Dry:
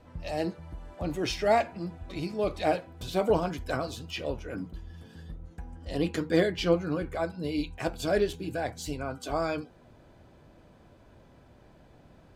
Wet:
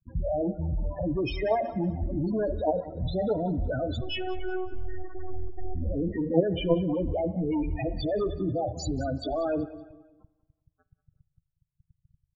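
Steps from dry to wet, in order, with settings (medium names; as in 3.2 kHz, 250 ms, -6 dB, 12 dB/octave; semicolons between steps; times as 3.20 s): dynamic bell 580 Hz, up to +3 dB, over -40 dBFS, Q 5.3; in parallel at +2 dB: compression 10:1, threshold -37 dBFS, peak gain reduction 20 dB; on the sum: companded quantiser 2-bit; saturation -2 dBFS, distortion -16 dB; 4.01–5.75 s: robot voice 371 Hz; loudest bins only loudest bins 8; on a send: feedback delay 187 ms, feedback 37%, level -17 dB; on the sum: spring tank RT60 1.2 s, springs 38/50 ms, chirp 50 ms, DRR 17.5 dB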